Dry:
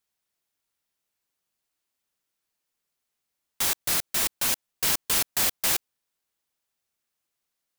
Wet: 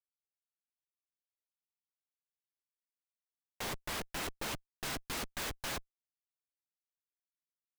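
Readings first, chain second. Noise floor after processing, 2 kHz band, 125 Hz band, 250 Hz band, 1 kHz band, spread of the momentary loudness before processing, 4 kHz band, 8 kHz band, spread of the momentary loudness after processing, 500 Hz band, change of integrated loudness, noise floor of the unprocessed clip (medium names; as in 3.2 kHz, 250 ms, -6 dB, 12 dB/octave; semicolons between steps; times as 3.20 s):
under -85 dBFS, -9.0 dB, -4.0 dB, -4.5 dB, -7.0 dB, 4 LU, -12.5 dB, -17.5 dB, 3 LU, -5.5 dB, -15.5 dB, -83 dBFS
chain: chorus voices 2, 0.85 Hz, delay 13 ms, depth 4.1 ms; Schmitt trigger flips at -26 dBFS; trim -2.5 dB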